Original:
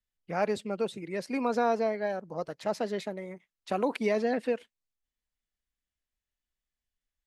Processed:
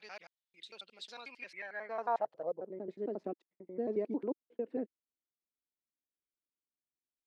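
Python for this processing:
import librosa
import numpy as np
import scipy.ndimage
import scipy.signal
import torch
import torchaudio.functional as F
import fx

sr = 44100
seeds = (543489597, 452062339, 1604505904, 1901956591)

y = fx.block_reorder(x, sr, ms=90.0, group=6)
y = fx.filter_sweep_bandpass(y, sr, from_hz=3700.0, to_hz=330.0, start_s=1.21, end_s=2.78, q=2.7)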